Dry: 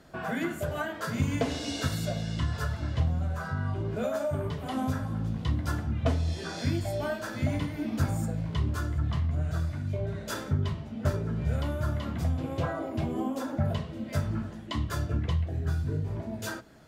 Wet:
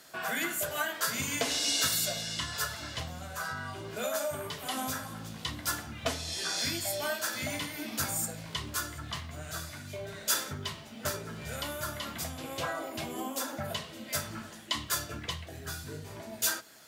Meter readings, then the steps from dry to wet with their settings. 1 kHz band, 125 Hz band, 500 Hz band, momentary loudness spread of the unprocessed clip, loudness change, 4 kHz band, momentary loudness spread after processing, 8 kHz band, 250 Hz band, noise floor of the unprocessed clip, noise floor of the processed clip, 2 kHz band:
0.0 dB, -14.5 dB, -4.0 dB, 4 LU, -2.0 dB, +8.5 dB, 10 LU, +13.0 dB, -9.0 dB, -41 dBFS, -47 dBFS, +3.5 dB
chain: tilt +4.5 dB/oct

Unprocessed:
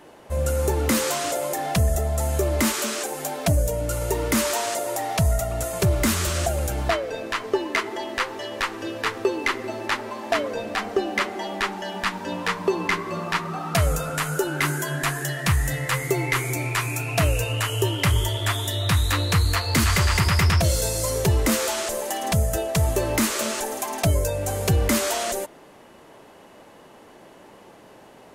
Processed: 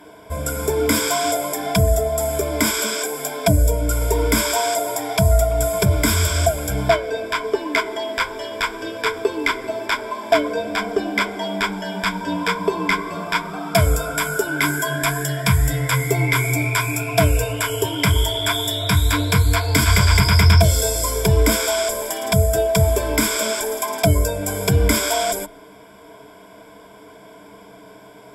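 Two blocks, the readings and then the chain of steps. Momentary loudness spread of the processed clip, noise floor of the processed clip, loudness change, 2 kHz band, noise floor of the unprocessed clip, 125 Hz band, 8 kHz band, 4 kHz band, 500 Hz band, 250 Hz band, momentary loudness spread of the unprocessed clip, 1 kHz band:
7 LU, -44 dBFS, +4.5 dB, +4.5 dB, -48 dBFS, +4.5 dB, +4.0 dB, +4.5 dB, +5.0 dB, +3.5 dB, 7 LU, +4.0 dB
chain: ripple EQ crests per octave 1.7, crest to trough 16 dB; gain +1.5 dB

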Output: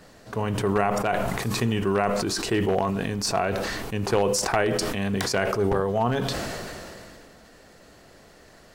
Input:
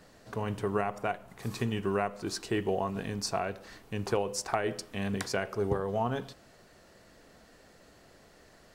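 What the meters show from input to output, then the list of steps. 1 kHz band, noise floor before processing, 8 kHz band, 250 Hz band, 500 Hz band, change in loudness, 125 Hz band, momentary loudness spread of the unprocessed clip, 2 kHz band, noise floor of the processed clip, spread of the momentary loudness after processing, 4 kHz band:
+8.0 dB, -58 dBFS, +9.5 dB, +8.0 dB, +8.0 dB, +8.0 dB, +8.0 dB, 8 LU, +9.0 dB, -52 dBFS, 8 LU, +10.0 dB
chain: one-sided fold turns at -24.5 dBFS; sustainer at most 22 dB/s; gain +6 dB

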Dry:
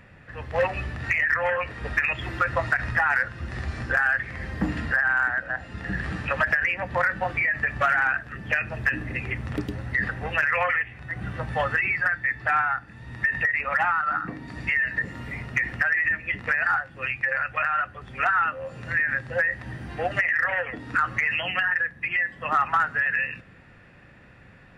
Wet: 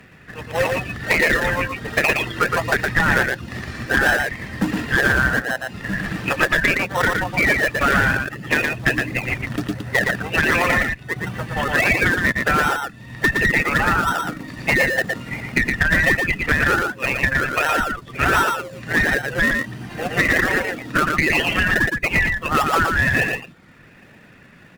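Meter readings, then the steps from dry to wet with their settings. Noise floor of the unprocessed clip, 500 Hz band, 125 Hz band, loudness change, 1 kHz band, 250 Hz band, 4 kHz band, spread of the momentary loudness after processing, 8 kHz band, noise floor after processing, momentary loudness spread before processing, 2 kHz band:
-50 dBFS, +8.0 dB, +8.0 dB, +5.5 dB, +4.0 dB, +12.0 dB, +12.5 dB, 9 LU, n/a, -47 dBFS, 10 LU, +5.0 dB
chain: HPF 190 Hz 12 dB/oct; reverb removal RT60 0.69 s; bell 570 Hz -8.5 dB 2.2 oct; in parallel at -3.5 dB: decimation with a swept rate 37×, swing 100% 1.4 Hz; on the sum: one-sided clip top -20.5 dBFS; echo 0.116 s -4 dB; gain +7.5 dB

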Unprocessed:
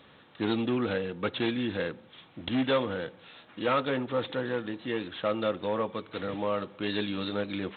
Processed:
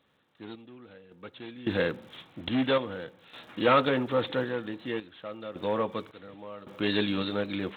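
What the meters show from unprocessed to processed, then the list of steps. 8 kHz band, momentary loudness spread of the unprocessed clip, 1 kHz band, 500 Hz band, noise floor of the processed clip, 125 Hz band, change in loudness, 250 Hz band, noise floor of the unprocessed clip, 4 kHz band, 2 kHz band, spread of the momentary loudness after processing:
n/a, 8 LU, +2.0 dB, +0.5 dB, -64 dBFS, 0.0 dB, +2.0 dB, -0.5 dB, -56 dBFS, +1.0 dB, +1.0 dB, 21 LU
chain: crackle 170/s -54 dBFS; random-step tremolo 1.8 Hz, depth 95%; gain +5 dB

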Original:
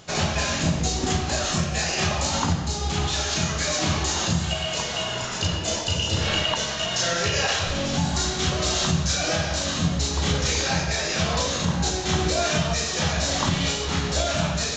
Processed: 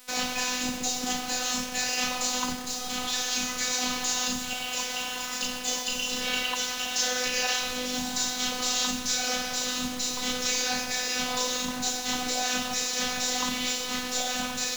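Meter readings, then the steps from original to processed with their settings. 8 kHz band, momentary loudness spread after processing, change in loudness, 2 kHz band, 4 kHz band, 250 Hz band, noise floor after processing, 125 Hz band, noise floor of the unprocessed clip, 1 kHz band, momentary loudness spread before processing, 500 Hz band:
-1.0 dB, 4 LU, -4.0 dB, -3.0 dB, -3.0 dB, -7.0 dB, -34 dBFS, -24.0 dB, -29 dBFS, -4.5 dB, 3 LU, -9.0 dB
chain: robotiser 251 Hz; tilt +1.5 dB/oct; requantised 6-bit, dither none; gain -3 dB

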